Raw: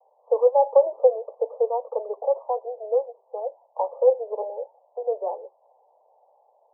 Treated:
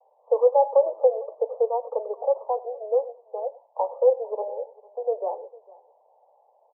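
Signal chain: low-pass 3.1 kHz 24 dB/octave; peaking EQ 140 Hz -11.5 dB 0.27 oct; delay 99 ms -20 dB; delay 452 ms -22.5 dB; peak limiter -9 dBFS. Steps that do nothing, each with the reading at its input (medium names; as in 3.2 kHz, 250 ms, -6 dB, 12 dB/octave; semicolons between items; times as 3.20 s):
low-pass 3.1 kHz: input has nothing above 1 kHz; peaking EQ 140 Hz: input has nothing below 380 Hz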